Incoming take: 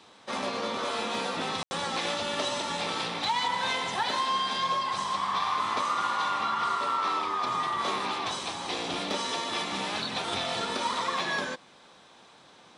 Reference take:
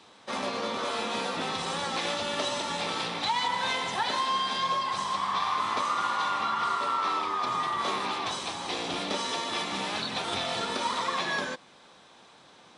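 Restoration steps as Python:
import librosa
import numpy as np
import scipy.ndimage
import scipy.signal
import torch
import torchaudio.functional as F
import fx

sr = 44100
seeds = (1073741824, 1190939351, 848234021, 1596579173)

y = fx.fix_declip(x, sr, threshold_db=-19.5)
y = fx.fix_ambience(y, sr, seeds[0], print_start_s=11.6, print_end_s=12.1, start_s=1.63, end_s=1.71)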